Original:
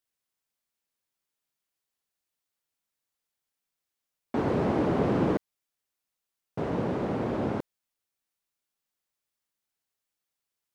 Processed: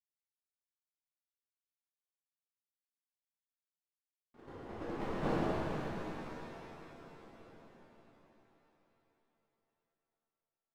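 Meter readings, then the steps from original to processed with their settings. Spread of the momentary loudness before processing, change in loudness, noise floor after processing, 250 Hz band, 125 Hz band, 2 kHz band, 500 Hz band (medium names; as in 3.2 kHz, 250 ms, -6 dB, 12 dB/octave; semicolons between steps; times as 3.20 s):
10 LU, -11.0 dB, under -85 dBFS, -13.0 dB, -12.0 dB, -6.5 dB, -12.0 dB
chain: one-sided wavefolder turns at -25 dBFS; gate -21 dBFS, range -50 dB; gain riding within 4 dB 2 s; pitch-shifted reverb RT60 3.7 s, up +7 st, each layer -8 dB, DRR -11 dB; trim +11.5 dB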